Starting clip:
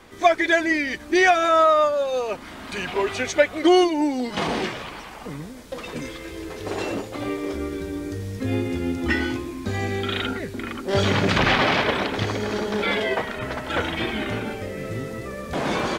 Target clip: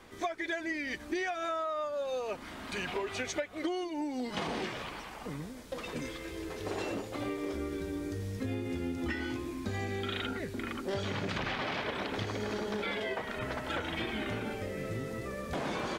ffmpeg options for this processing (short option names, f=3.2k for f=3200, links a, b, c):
-af "acompressor=threshold=-25dB:ratio=12,volume=-6dB"